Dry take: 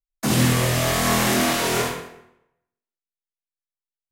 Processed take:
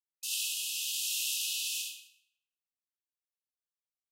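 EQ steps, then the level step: brick-wall FIR high-pass 2.5 kHz; -7.0 dB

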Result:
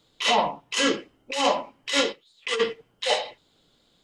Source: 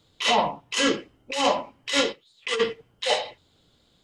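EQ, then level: peaking EQ 79 Hz -10.5 dB 1.3 oct; 0.0 dB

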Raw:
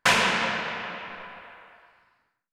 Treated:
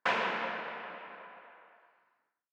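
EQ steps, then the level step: high-pass 310 Hz 12 dB/octave; tape spacing loss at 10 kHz 33 dB; -4.0 dB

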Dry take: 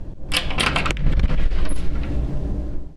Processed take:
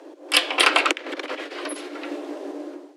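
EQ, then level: steep high-pass 290 Hz 96 dB/octave; +3.5 dB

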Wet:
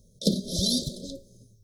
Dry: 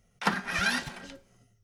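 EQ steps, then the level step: brick-wall FIR band-stop 650–3100 Hz; elliptic band-stop 1.1–3.8 kHz, stop band 40 dB; peaking EQ 2.4 kHz +8 dB 0.56 oct; +9.0 dB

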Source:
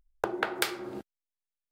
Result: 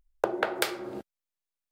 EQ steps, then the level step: dynamic bell 570 Hz, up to +8 dB, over -48 dBFS, Q 2.1; 0.0 dB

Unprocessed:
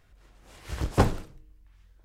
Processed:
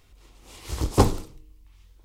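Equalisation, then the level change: fifteen-band graphic EQ 160 Hz -6 dB, 630 Hz -8 dB, 1.6 kHz -12 dB; dynamic bell 2.7 kHz, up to -6 dB, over -57 dBFS, Q 1.5; bass shelf 230 Hz -5.5 dB; +9.0 dB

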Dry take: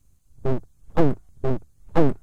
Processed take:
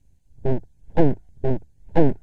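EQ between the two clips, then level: Butterworth band-stop 1.2 kHz, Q 2.3; low-pass 2.8 kHz 6 dB/octave; +1.5 dB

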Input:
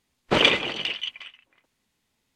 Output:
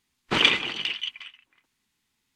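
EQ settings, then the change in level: bass shelf 250 Hz -5 dB; peaking EQ 570 Hz -11 dB 0.81 oct; 0.0 dB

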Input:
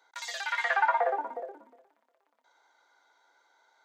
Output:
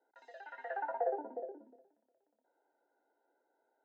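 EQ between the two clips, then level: boxcar filter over 39 samples; high-pass 210 Hz; tilt EQ -3 dB/octave; -2.0 dB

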